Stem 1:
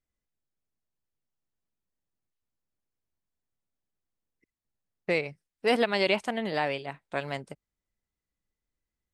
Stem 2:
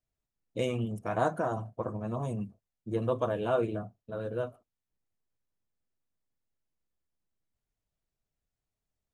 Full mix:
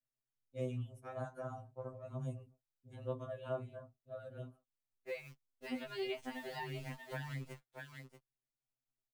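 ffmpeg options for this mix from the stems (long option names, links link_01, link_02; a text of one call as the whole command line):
ffmpeg -i stem1.wav -i stem2.wav -filter_complex "[0:a]acrusher=bits=8:dc=4:mix=0:aa=0.000001,volume=-1dB,asplit=2[link_01][link_02];[link_02]volume=-13dB[link_03];[1:a]volume=-8.5dB,asplit=2[link_04][link_05];[link_05]apad=whole_len=402766[link_06];[link_01][link_06]sidechaincompress=threshold=-57dB:ratio=12:attack=31:release=1250[link_07];[link_03]aecho=0:1:634:1[link_08];[link_07][link_04][link_08]amix=inputs=3:normalize=0,acrossover=split=220[link_09][link_10];[link_10]acompressor=threshold=-39dB:ratio=6[link_11];[link_09][link_11]amix=inputs=2:normalize=0,afftfilt=real='re*2.45*eq(mod(b,6),0)':imag='im*2.45*eq(mod(b,6),0)':win_size=2048:overlap=0.75" out.wav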